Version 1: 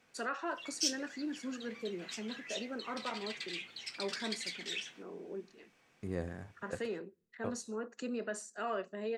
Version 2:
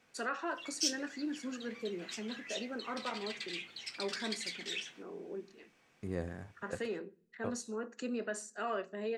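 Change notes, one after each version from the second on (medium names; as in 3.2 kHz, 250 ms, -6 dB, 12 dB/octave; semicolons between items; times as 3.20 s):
first voice: send +10.0 dB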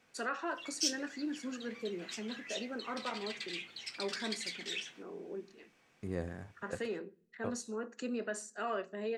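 no change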